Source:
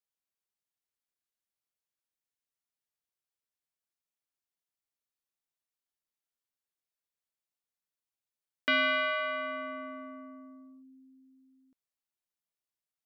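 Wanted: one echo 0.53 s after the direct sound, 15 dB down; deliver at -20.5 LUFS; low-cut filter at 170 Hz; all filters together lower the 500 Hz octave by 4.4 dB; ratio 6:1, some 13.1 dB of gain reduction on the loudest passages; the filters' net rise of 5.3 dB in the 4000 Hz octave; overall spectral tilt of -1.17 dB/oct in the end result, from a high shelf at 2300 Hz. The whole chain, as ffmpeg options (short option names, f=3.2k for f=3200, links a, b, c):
-af "highpass=170,equalizer=f=500:t=o:g=-6.5,highshelf=f=2.3k:g=4.5,equalizer=f=4k:t=o:g=4,acompressor=threshold=-36dB:ratio=6,aecho=1:1:530:0.178,volume=19dB"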